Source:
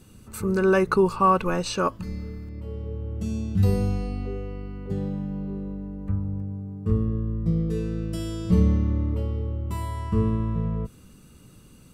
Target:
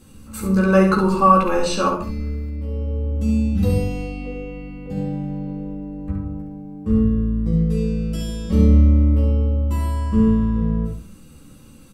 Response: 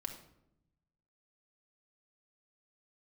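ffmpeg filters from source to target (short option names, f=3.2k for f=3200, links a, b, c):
-filter_complex "[0:a]aecho=1:1:14|68:0.668|0.562[a];[1:a]atrim=start_sample=2205,afade=t=out:st=0.21:d=0.01,atrim=end_sample=9702[b];[a][b]afir=irnorm=-1:irlink=0,volume=4dB"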